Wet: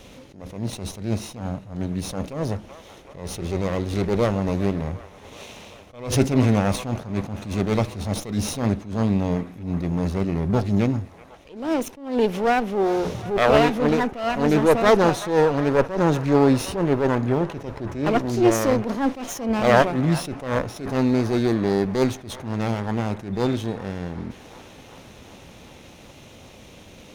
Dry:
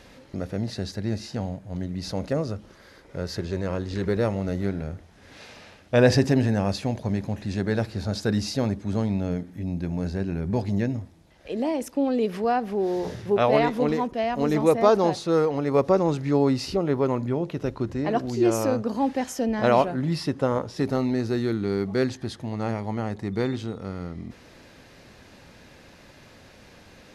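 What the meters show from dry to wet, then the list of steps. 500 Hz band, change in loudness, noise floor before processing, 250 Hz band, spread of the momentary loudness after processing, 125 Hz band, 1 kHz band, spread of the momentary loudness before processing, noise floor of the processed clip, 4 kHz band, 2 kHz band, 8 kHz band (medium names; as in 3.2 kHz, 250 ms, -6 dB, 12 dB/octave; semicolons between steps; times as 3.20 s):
+2.0 dB, +2.5 dB, -51 dBFS, +3.0 dB, 14 LU, +3.0 dB, +3.5 dB, 12 LU, -46 dBFS, +2.5 dB, +5.0 dB, +5.5 dB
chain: comb filter that takes the minimum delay 0.31 ms; feedback echo behind a band-pass 378 ms, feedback 76%, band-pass 1.3 kHz, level -16 dB; attacks held to a fixed rise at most 110 dB/s; trim +5.5 dB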